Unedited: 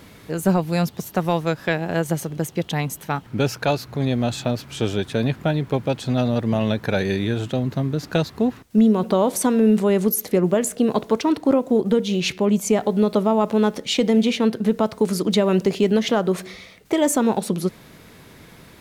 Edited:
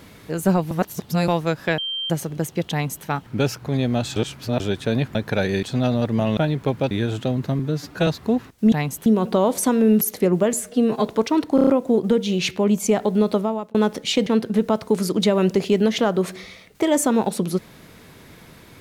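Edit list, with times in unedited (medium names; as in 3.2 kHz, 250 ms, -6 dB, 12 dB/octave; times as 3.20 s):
0.71–1.28 s: reverse
1.78–2.10 s: bleep 3.15 kHz -24 dBFS
2.71–3.05 s: copy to 8.84 s
3.62–3.90 s: delete
4.44–4.88 s: reverse
5.43–5.97 s: swap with 6.71–7.19 s
7.87–8.19 s: stretch 1.5×
9.79–10.12 s: delete
10.64–10.99 s: stretch 1.5×
11.49 s: stutter 0.03 s, 5 plays
13.12–13.56 s: fade out
14.08–14.37 s: delete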